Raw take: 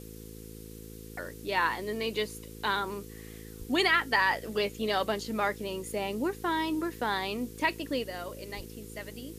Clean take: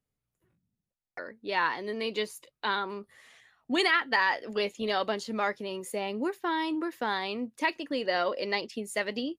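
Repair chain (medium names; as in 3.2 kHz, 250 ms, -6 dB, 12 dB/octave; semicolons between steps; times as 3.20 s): de-hum 54.5 Hz, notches 9; 3.58–3.70 s: high-pass 140 Hz 24 dB/octave; 8.56–8.68 s: high-pass 140 Hz 24 dB/octave; noise print and reduce 30 dB; 8.04 s: gain correction +11.5 dB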